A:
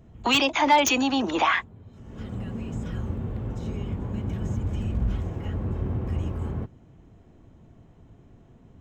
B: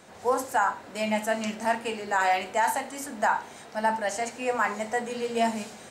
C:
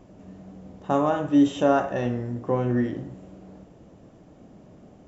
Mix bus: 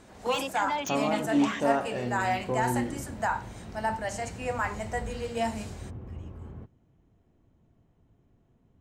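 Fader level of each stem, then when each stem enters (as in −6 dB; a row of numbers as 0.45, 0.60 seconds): −12.5, −4.5, −6.5 decibels; 0.00, 0.00, 0.00 seconds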